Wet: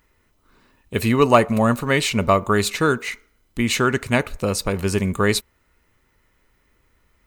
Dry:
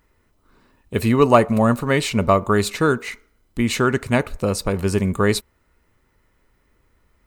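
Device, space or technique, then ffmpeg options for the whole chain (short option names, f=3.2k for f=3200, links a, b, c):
presence and air boost: -af "equalizer=f=2.7k:t=o:w=1.8:g=4.5,equalizer=f=6.4k:t=o:w=0.28:g=2.5,highshelf=f=9.4k:g=5.5,volume=-1.5dB"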